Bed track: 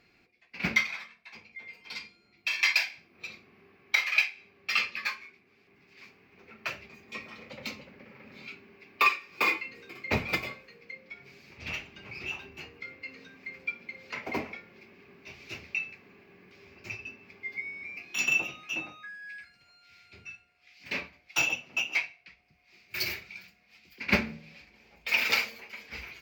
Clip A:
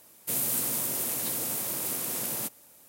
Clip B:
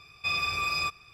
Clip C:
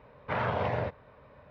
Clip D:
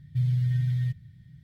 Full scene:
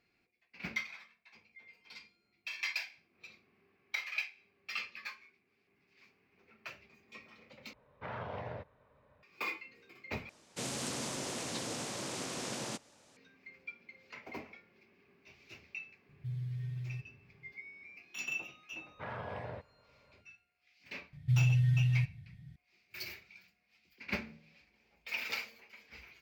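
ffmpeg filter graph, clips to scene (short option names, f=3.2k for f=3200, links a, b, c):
-filter_complex "[3:a]asplit=2[a][b];[4:a]asplit=2[c][d];[0:a]volume=-12dB[e];[1:a]lowpass=f=6.7k:w=0.5412,lowpass=f=6.7k:w=1.3066[f];[d]aresample=32000,aresample=44100[g];[e]asplit=3[h][i][j];[h]atrim=end=7.734[k];[a]atrim=end=1.5,asetpts=PTS-STARTPTS,volume=-12dB[l];[i]atrim=start=9.226:end=10.294[m];[f]atrim=end=2.88,asetpts=PTS-STARTPTS,volume=-1dB[n];[j]atrim=start=13.166[o];[c]atrim=end=1.43,asetpts=PTS-STARTPTS,volume=-14dB,afade=t=in:d=0.004:c=hsin,afade=t=out:st=1.426:d=0.004:c=hsin,adelay=16090[p];[b]atrim=end=1.5,asetpts=PTS-STARTPTS,volume=-12.5dB,afade=t=in:d=0.004:c=hsin,afade=t=out:st=1.496:d=0.004:c=hsin,adelay=18710[q];[g]atrim=end=1.43,asetpts=PTS-STARTPTS,volume=-2.5dB,afade=t=in:d=0.004:c=hsin,afade=t=out:st=1.426:d=0.004:c=hsin,adelay=21130[r];[k][l]acrossfade=d=0.004:c1=hsin:c2=hsin[s];[s][m]acrossfade=d=0.004:c1=hsin:c2=hsin[t];[t][n]acrossfade=d=0.004:c1=hsin:c2=hsin[u];[u][o]acrossfade=d=0.004:c1=hsin:c2=hsin[v];[v][p][q][r]amix=inputs=4:normalize=0"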